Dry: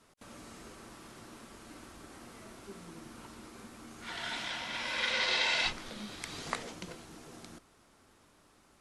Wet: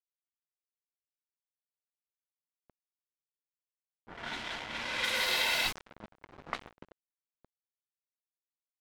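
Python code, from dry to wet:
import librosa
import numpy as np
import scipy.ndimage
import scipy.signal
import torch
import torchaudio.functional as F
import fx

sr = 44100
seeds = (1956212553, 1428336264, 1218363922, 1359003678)

y = fx.quant_dither(x, sr, seeds[0], bits=6, dither='none')
y = fx.env_lowpass(y, sr, base_hz=650.0, full_db=-27.0)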